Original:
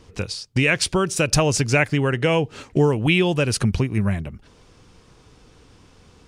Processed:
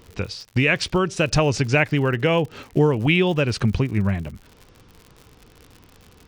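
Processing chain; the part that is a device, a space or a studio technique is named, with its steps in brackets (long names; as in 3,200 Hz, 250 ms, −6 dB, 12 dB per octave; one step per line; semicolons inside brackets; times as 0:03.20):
lo-fi chain (low-pass filter 4,500 Hz 12 dB per octave; tape wow and flutter; surface crackle 92 per second −33 dBFS)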